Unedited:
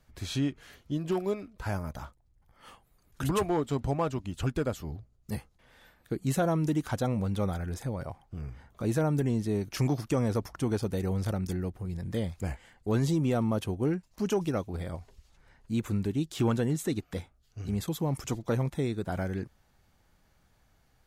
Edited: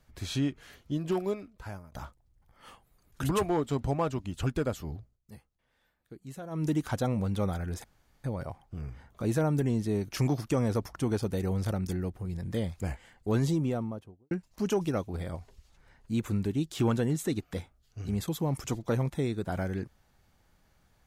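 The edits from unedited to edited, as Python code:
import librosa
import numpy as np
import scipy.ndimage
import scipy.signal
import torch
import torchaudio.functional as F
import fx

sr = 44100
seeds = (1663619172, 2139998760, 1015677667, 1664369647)

y = fx.studio_fade_out(x, sr, start_s=12.97, length_s=0.94)
y = fx.edit(y, sr, fx.fade_out_to(start_s=1.22, length_s=0.7, floor_db=-20.0),
    fx.fade_down_up(start_s=4.96, length_s=1.77, db=-15.0, fade_s=0.23, curve='qsin'),
    fx.insert_room_tone(at_s=7.84, length_s=0.4), tone=tone)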